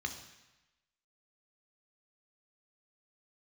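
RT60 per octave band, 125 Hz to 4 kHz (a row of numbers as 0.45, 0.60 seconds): 1.0, 0.95, 0.95, 1.1, 1.1, 1.0 seconds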